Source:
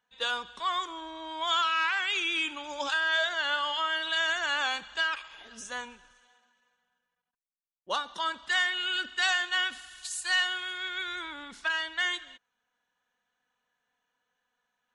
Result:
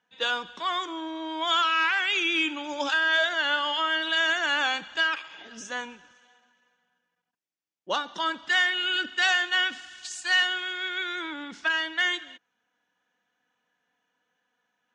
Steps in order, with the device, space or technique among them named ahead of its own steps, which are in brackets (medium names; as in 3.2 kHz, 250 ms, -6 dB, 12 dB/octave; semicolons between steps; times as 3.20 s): car door speaker (cabinet simulation 110–6600 Hz, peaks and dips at 180 Hz +4 dB, 310 Hz +7 dB, 1.1 kHz -4 dB, 4.1 kHz -5 dB); trim +4.5 dB